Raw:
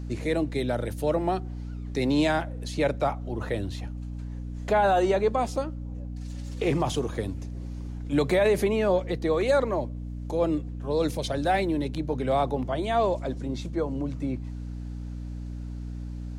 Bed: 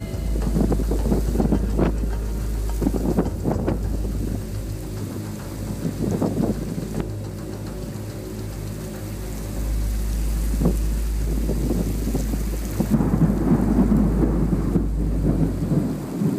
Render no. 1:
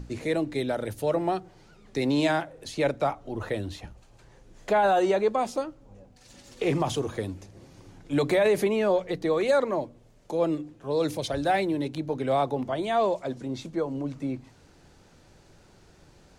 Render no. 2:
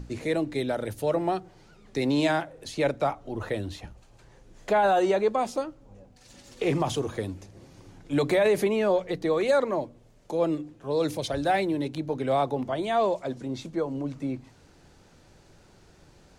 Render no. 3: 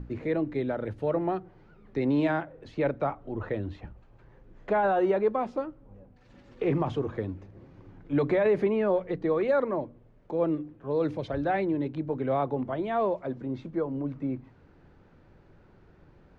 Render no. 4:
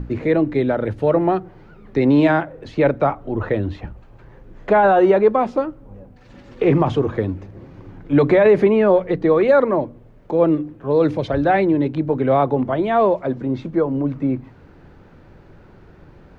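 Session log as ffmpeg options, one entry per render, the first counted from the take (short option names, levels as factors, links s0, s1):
-af "bandreject=f=60:t=h:w=6,bandreject=f=120:t=h:w=6,bandreject=f=180:t=h:w=6,bandreject=f=240:t=h:w=6,bandreject=f=300:t=h:w=6"
-af anull
-af "lowpass=1700,equalizer=f=720:w=1.7:g=-4"
-af "volume=3.55"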